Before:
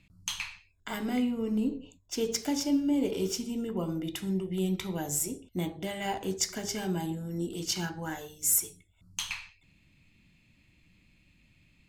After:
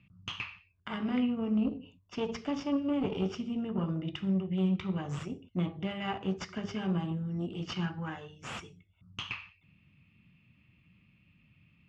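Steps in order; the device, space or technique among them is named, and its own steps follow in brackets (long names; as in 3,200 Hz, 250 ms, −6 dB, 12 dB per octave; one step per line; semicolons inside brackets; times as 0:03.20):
guitar amplifier (tube saturation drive 24 dB, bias 0.8; bass and treble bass +11 dB, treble −2 dB; loudspeaker in its box 110–4,500 Hz, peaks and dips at 300 Hz −4 dB, 1,200 Hz +9 dB, 2,800 Hz +7 dB, 4,100 Hz −9 dB)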